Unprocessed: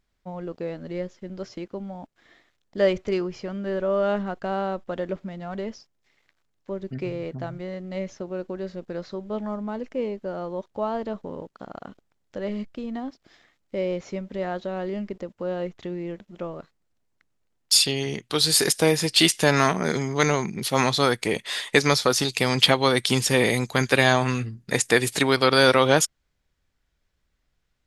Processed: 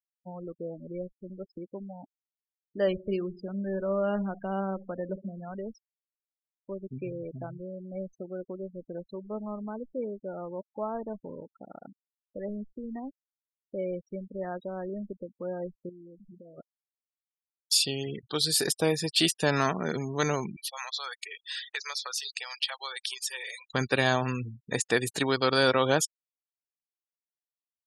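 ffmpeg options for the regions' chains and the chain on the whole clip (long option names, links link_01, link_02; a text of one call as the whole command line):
ffmpeg -i in.wav -filter_complex "[0:a]asettb=1/sr,asplit=3[link_01][link_02][link_03];[link_01]atrim=end=2.874[link_04];[link_02]atrim=start=2.87:end=5.49,asetpts=PTS-STARTPTS,afade=type=in:duration=0.004:curve=qsin,afade=type=out:start_time=2.616:duration=0.004:curve=qsin,equalizer=frequency=200:width=6.3:gain=5.5,aecho=1:1:62|124|186|248|310:0.15|0.0778|0.0405|0.021|0.0109,atrim=end_sample=115542[link_05];[link_03]atrim=start=5.486[link_06];[link_04][link_05]acrossfade=duration=0.004:curve1=hsin:curve2=qsin[link_07];[link_07][link_06]acrossfade=duration=0.004:curve1=qsin:curve2=hsin,asettb=1/sr,asplit=3[link_08][link_09][link_10];[link_08]atrim=end=15.894[link_11];[link_09]atrim=start=15.89:end=16.58,asetpts=PTS-STARTPTS,afade=type=in:duration=0.004:curve=qsin,afade=type=out:start_time=0.686:duration=0.004:curve=qsin,aeval=exprs='val(0)+0.5*0.00841*sgn(val(0))':channel_layout=same,acompressor=threshold=-39dB:ratio=12:attack=3.2:release=140:knee=1:detection=peak[link_12];[link_10]atrim=start=16.576[link_13];[link_11][link_12]acrossfade=duration=0.004:curve1=hsin:curve2=qsin[link_14];[link_14][link_13]acrossfade=duration=0.004:curve1=qsin:curve2=hsin,asettb=1/sr,asplit=3[link_15][link_16][link_17];[link_15]atrim=end=18.234[link_18];[link_16]atrim=start=18.23:end=19.98,asetpts=PTS-STARTPTS,afade=type=in:duration=0.004:curve=qsin,afade=type=out:start_time=1.746:duration=0.004:curve=qsin,acompressor=mode=upward:threshold=-33dB:ratio=2.5:attack=3.2:release=140:knee=2.83:detection=peak,bandreject=frequency=6500:width=27[link_19];[link_17]atrim=start=19.976[link_20];[link_18][link_19]acrossfade=duration=0.004:curve1=hsin:curve2=qsin[link_21];[link_21][link_20]acrossfade=duration=0.004:curve1=qsin:curve2=hsin,asettb=1/sr,asplit=3[link_22][link_23][link_24];[link_22]atrim=end=20.564[link_25];[link_23]atrim=start=20.56:end=23.74,asetpts=PTS-STARTPTS,afade=type=in:duration=0.004:curve=qsin,afade=type=out:start_time=3.176:duration=0.004:curve=qsin,highshelf=frequency=8500:gain=2,acompressor=threshold=-22dB:ratio=2:attack=3.2:release=140:knee=1:detection=peak,highpass=1200[link_26];[link_24]atrim=start=23.736[link_27];[link_25][link_26]acrossfade=duration=0.004:curve1=hsin:curve2=qsin[link_28];[link_28][link_27]acrossfade=duration=0.004:curve1=qsin:curve2=hsin,bandreject=frequency=2100:width=8.7,afftfilt=real='re*gte(hypot(re,im),0.0316)':imag='im*gte(hypot(re,im),0.0316)':win_size=1024:overlap=0.75,volume=-6dB" out.wav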